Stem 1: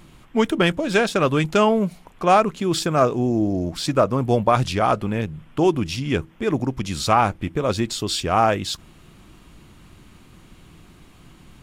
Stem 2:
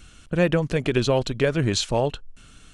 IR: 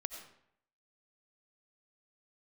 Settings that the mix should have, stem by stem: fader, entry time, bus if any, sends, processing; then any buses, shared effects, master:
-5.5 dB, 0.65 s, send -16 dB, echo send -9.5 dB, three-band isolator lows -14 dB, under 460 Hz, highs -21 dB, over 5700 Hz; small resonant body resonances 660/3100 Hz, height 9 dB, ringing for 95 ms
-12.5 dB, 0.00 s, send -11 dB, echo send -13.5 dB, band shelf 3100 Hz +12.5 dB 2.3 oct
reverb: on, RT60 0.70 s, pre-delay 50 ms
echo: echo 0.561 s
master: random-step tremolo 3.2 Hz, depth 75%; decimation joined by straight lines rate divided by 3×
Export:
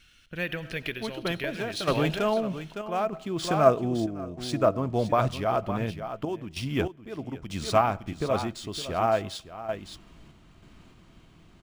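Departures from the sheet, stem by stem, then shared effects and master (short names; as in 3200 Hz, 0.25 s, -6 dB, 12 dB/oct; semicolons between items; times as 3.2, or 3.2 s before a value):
stem 1: missing three-band isolator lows -14 dB, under 460 Hz, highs -21 dB, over 5700 Hz; stem 2: send -11 dB -> -3 dB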